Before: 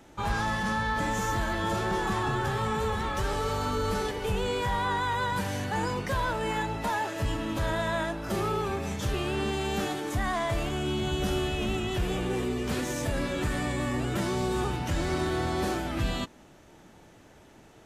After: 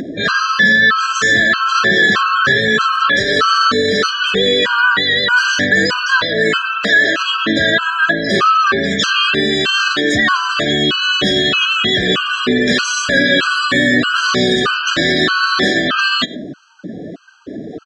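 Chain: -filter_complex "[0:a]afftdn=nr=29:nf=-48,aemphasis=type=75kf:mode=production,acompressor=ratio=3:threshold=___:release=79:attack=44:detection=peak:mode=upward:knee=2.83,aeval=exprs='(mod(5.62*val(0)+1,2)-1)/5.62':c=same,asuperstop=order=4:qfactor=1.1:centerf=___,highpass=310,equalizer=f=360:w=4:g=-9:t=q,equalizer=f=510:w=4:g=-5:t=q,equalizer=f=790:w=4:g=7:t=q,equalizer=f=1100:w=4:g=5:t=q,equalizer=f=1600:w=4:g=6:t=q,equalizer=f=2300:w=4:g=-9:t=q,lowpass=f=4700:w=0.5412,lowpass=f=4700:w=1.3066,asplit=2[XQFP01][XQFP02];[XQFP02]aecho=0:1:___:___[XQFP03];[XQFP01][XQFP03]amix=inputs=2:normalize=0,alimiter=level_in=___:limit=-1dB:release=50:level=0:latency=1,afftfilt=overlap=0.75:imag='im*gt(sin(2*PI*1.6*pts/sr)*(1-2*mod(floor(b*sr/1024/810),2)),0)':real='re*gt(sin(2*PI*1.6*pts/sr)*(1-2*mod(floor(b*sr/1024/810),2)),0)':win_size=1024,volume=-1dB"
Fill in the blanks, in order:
-36dB, 850, 102, 0.0668, 25.5dB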